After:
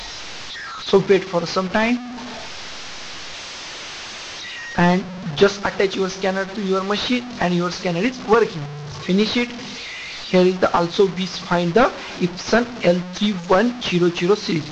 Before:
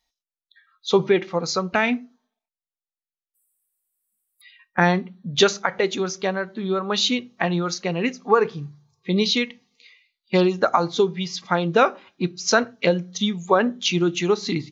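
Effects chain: one-bit delta coder 32 kbps, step -29 dBFS; trim +3.5 dB

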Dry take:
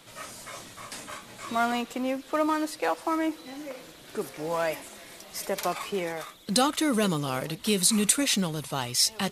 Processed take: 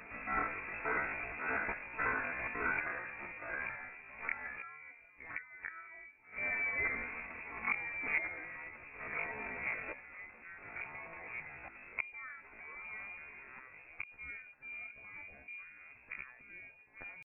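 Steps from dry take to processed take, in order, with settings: comb 4.7 ms, depth 36%; inverted gate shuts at -26 dBFS, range -30 dB; ever faster or slower copies 294 ms, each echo -2 st, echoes 2, each echo -6 dB; frequency inversion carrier 2.6 kHz; tempo 0.54×; trim +5 dB

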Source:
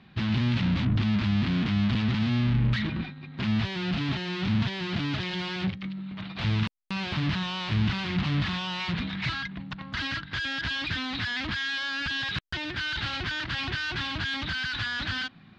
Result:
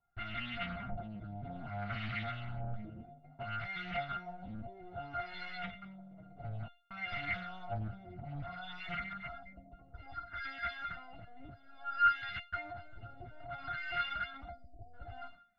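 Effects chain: companding laws mixed up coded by mu; 14.49–14.94 s: spectral selection erased 760–4300 Hz; gate with hold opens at -29 dBFS; feedback comb 700 Hz, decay 0.34 s, mix 100%; 8.06–10.47 s: LFO notch saw down 7.5 Hz 420–4400 Hz; flange 0.2 Hz, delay 2.1 ms, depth 8.6 ms, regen +9%; LFO low-pass sine 0.59 Hz 450–2000 Hz; loudspeaker Doppler distortion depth 0.29 ms; trim +16 dB

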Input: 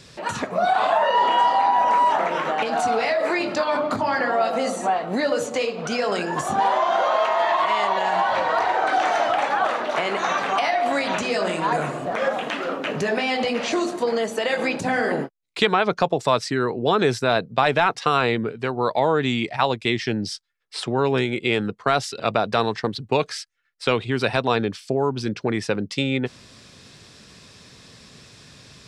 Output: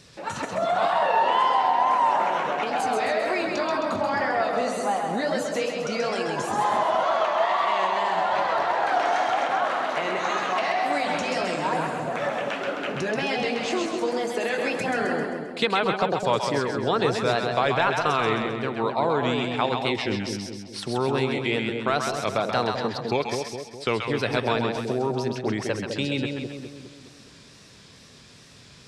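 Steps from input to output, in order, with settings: wow and flutter 120 cents; two-band feedback delay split 690 Hz, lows 206 ms, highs 132 ms, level -4 dB; trim -4.5 dB

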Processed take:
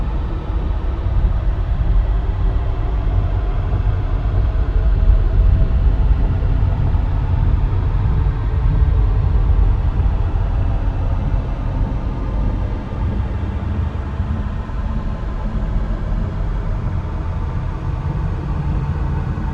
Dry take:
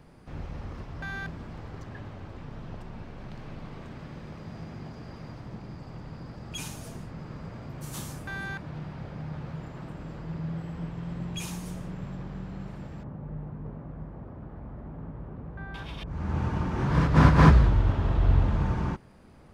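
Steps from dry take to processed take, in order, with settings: Paulstretch 41×, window 0.10 s, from 18.16 s; phaser 1.6 Hz, delay 3.2 ms, feedback 22%; trim +3 dB

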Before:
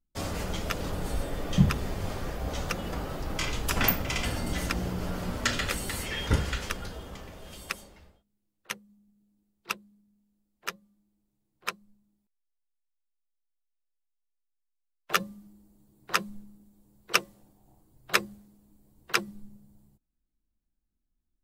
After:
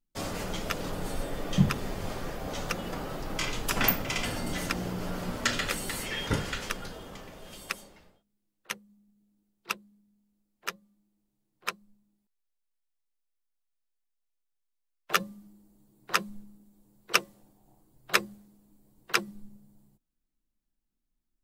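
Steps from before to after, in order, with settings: peaking EQ 65 Hz -14.5 dB 0.76 oct

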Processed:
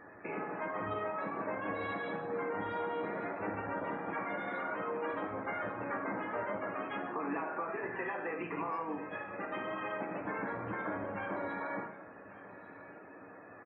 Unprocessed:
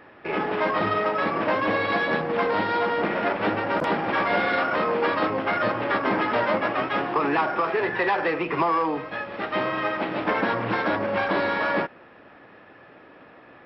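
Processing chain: compression 2.5:1, threshold -37 dBFS, peak gain reduction 12 dB; loudest bins only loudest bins 64; on a send: delay 1144 ms -17.5 dB; on the sum: gated-style reverb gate 230 ms falling, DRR 3.5 dB; harmony voices -7 st -13 dB, -3 st -17 dB; trim -5 dB

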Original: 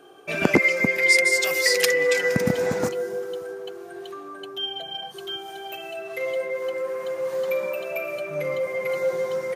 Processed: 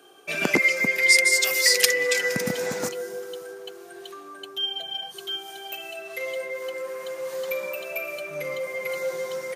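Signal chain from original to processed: high-pass 130 Hz 12 dB/octave; treble shelf 2.1 kHz +11 dB; trim -5.5 dB

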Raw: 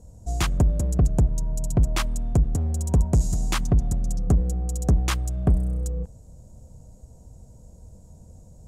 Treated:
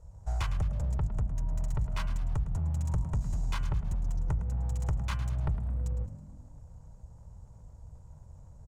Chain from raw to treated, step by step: comb filter that takes the minimum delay 2 ms; treble shelf 8.4 kHz -9.5 dB; de-hum 130.7 Hz, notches 23; compression, threshold -25 dBFS, peak gain reduction 10 dB; FFT filter 150 Hz 0 dB, 230 Hz -20 dB, 880 Hz +1 dB, 7.3 kHz -7 dB; frequency-shifting echo 108 ms, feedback 47%, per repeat +45 Hz, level -13 dB; trim -1.5 dB

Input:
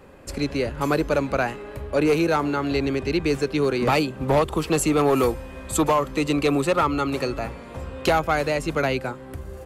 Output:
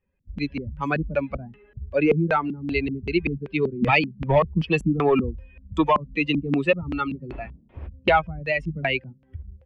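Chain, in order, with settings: expander on every frequency bin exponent 2; 7.31–7.86 s: wind noise 460 Hz -49 dBFS; LFO low-pass square 2.6 Hz 200–2600 Hz; trim +4 dB

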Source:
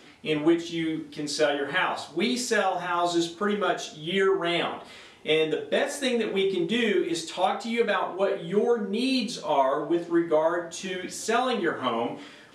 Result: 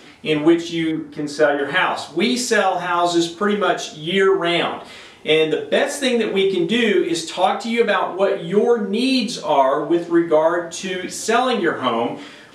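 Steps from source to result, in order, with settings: 0.91–1.59 s: resonant high shelf 2.1 kHz -8.5 dB, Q 1.5; trim +7.5 dB

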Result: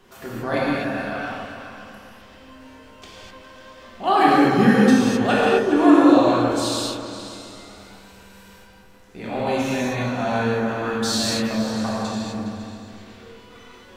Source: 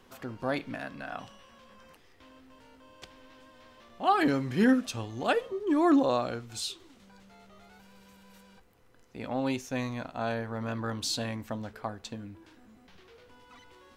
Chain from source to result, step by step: delay with an opening low-pass 137 ms, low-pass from 400 Hz, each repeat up 2 oct, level -6 dB; gated-style reverb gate 280 ms flat, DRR -7.5 dB; trim +2 dB

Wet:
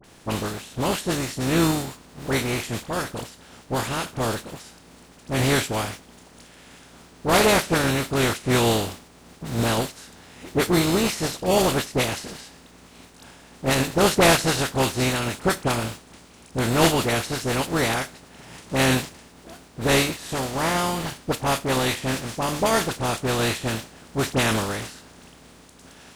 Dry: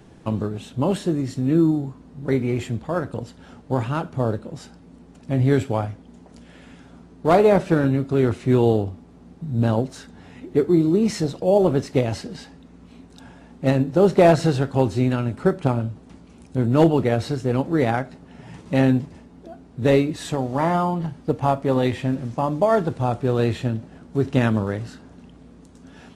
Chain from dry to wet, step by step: spectral contrast reduction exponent 0.47; phase dispersion highs, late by 43 ms, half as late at 1.5 kHz; trim -2.5 dB

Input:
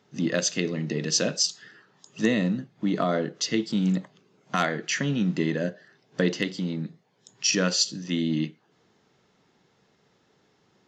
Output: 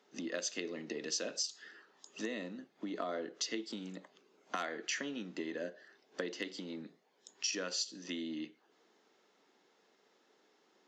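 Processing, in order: compression 5:1, threshold -30 dBFS, peak gain reduction 11.5 dB; high-pass 270 Hz 24 dB/octave; trim -4 dB

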